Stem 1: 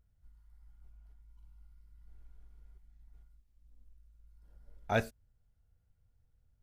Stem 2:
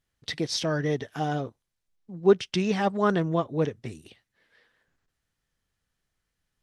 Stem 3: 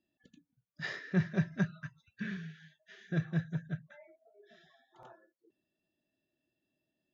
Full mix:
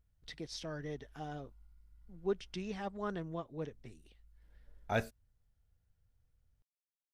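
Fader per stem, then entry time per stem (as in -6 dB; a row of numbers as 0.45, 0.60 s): -3.0 dB, -15.5 dB, off; 0.00 s, 0.00 s, off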